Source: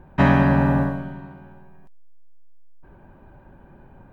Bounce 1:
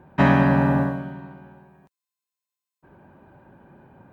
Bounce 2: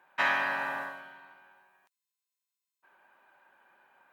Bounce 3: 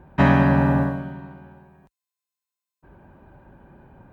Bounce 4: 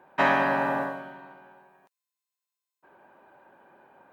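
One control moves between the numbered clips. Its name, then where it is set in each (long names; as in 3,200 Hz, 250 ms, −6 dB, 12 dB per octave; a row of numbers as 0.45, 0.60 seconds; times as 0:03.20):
high-pass filter, corner frequency: 110, 1,400, 42, 530 Hertz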